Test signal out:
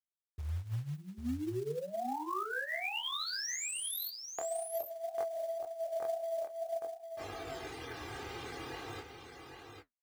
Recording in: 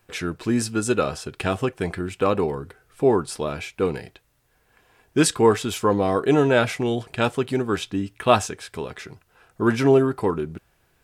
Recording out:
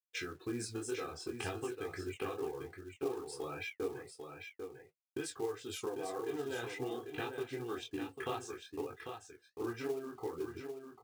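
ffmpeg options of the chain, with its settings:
-af "afftfilt=real='re*gte(hypot(re,im),0.0178)':imag='im*gte(hypot(re,im),0.0178)':win_size=1024:overlap=0.75,agate=range=0.0178:threshold=0.0158:ratio=16:detection=peak,highpass=87,lowshelf=f=110:g=-5.5,aecho=1:1:2.5:0.91,adynamicequalizer=threshold=0.00501:dfrequency=9200:dqfactor=4.8:tfrequency=9200:tqfactor=4.8:attack=5:release=100:ratio=0.375:range=2:mode=cutabove:tftype=bell,acompressor=threshold=0.0447:ratio=16,flanger=delay=20:depth=6.9:speed=0.55,acrusher=bits=10:mix=0:aa=0.000001,flanger=delay=8.4:depth=7.9:regen=-47:speed=1.9:shape=sinusoidal,acrusher=bits=5:mode=log:mix=0:aa=0.000001,aecho=1:1:796:0.447,volume=0.794"

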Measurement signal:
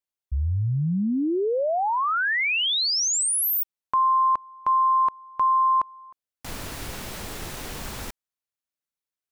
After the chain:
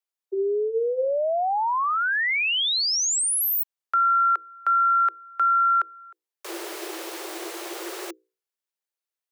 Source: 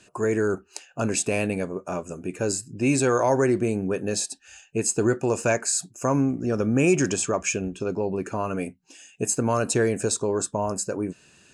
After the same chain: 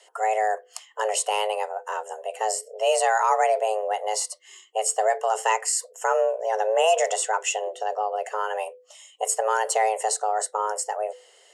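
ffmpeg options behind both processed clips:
-af "bandreject=f=60:t=h:w=6,bandreject=f=120:t=h:w=6,bandreject=f=180:t=h:w=6,afreqshift=320"

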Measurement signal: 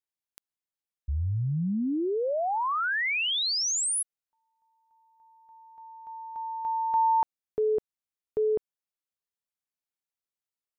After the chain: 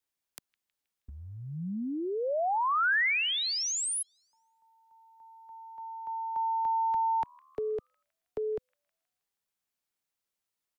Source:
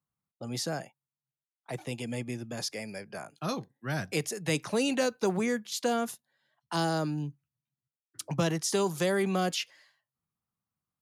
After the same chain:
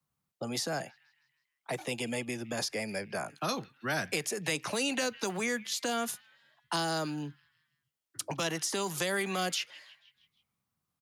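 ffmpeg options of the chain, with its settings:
-filter_complex "[0:a]acrossover=split=230|1800|2900[s0][s1][s2][s3];[s0]acompressor=threshold=0.00891:ratio=6:attack=0.16:release=218:knee=6:detection=rms[s4];[s1]alimiter=level_in=2:limit=0.0631:level=0:latency=1:release=165,volume=0.501[s5];[s2]asplit=6[s6][s7][s8][s9][s10][s11];[s7]adelay=159,afreqshift=75,volume=0.178[s12];[s8]adelay=318,afreqshift=150,volume=0.0923[s13];[s9]adelay=477,afreqshift=225,volume=0.0479[s14];[s10]adelay=636,afreqshift=300,volume=0.0251[s15];[s11]adelay=795,afreqshift=375,volume=0.013[s16];[s6][s12][s13][s14][s15][s16]amix=inputs=6:normalize=0[s17];[s3]volume=13.3,asoftclip=hard,volume=0.075[s18];[s4][s5][s17][s18]amix=inputs=4:normalize=0,acrossover=split=190|590|1700[s19][s20][s21][s22];[s19]acompressor=threshold=0.00282:ratio=4[s23];[s20]acompressor=threshold=0.00708:ratio=4[s24];[s21]acompressor=threshold=0.02:ratio=4[s25];[s22]acompressor=threshold=0.0126:ratio=4[s26];[s23][s24][s25][s26]amix=inputs=4:normalize=0,volume=1.88"

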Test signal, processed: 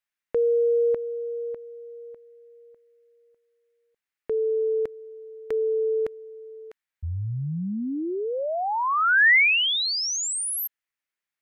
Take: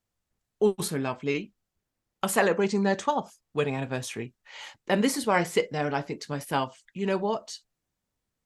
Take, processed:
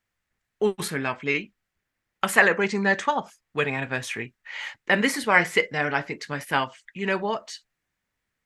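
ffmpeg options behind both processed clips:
-af "equalizer=f=1900:w=1.1:g=13,volume=0.891"

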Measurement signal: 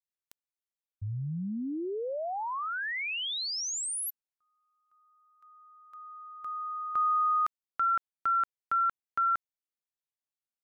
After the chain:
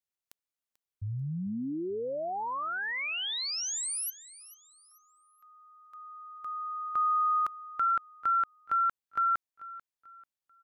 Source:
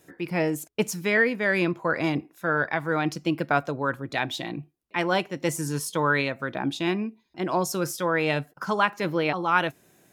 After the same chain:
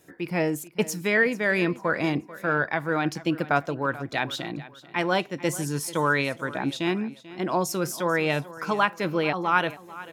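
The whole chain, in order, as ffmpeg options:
-af "aecho=1:1:440|880|1320:0.133|0.0453|0.0154"

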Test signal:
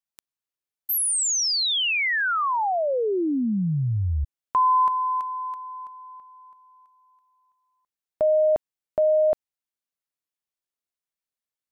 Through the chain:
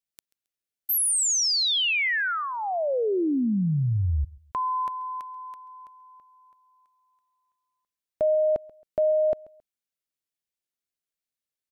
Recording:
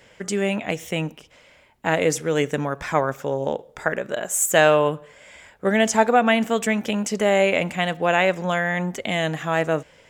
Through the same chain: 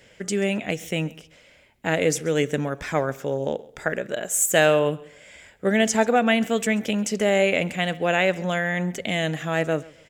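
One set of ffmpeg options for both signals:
-filter_complex "[0:a]equalizer=f=1000:t=o:w=0.84:g=-8,asplit=2[s0][s1];[s1]aecho=0:1:135|270:0.0794|0.0222[s2];[s0][s2]amix=inputs=2:normalize=0"

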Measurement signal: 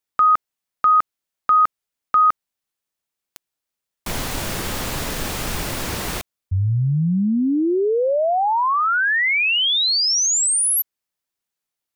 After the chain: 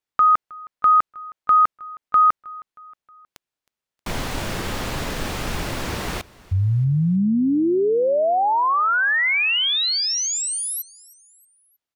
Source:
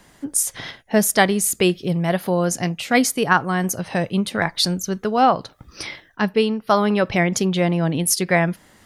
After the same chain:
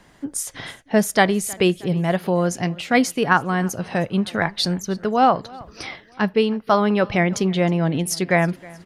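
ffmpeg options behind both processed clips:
-af "highshelf=f=6800:g=-11,aecho=1:1:315|630|945:0.0708|0.0368|0.0191"

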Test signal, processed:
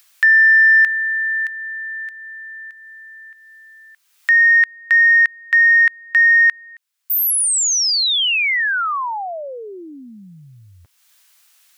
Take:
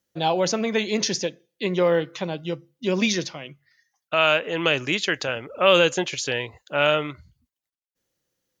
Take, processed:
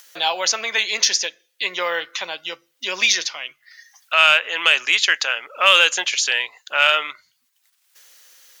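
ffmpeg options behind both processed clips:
-filter_complex "[0:a]highpass=1300,asplit=2[s0][s1];[s1]acompressor=mode=upward:threshold=0.0355:ratio=2.5,volume=0.708[s2];[s0][s2]amix=inputs=2:normalize=0,asoftclip=type=tanh:threshold=0.631,volume=1.68"

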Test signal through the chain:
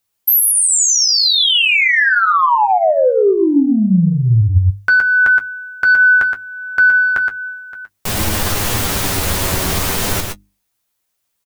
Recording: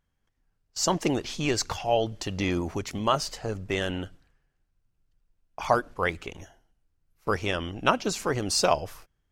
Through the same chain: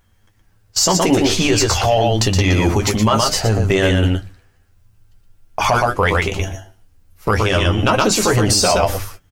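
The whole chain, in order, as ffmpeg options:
-filter_complex "[0:a]asplit=2[s0][s1];[s1]adelay=18,volume=0.237[s2];[s0][s2]amix=inputs=2:normalize=0,asplit=2[s3][s4];[s4]acompressor=threshold=0.0398:ratio=6,volume=0.708[s5];[s3][s5]amix=inputs=2:normalize=0,volume=2.66,asoftclip=hard,volume=0.376,equalizer=f=79:w=1.7:g=7.5,asplit=2[s6][s7];[s7]aecho=0:1:119:0.531[s8];[s6][s8]amix=inputs=2:normalize=0,acontrast=79,flanger=delay=9.4:depth=1.2:regen=31:speed=0.37:shape=sinusoidal,highshelf=f=8700:g=5.5,alimiter=limit=0.178:level=0:latency=1:release=46,bandreject=f=50:t=h:w=6,bandreject=f=100:t=h:w=6,bandreject=f=150:t=h:w=6,bandreject=f=200:t=h:w=6,bandreject=f=250:t=h:w=6,bandreject=f=300:t=h:w=6,bandreject=f=350:t=h:w=6,volume=2.82"

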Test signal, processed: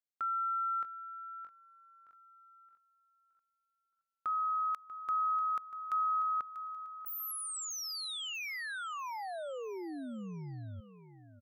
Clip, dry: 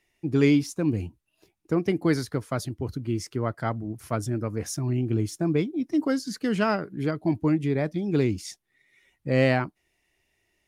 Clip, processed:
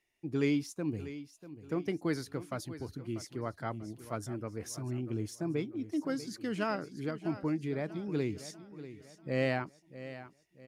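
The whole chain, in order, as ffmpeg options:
-af "lowshelf=f=160:g=-5,aecho=1:1:641|1282|1923|2564:0.2|0.0838|0.0352|0.0148,volume=0.376"

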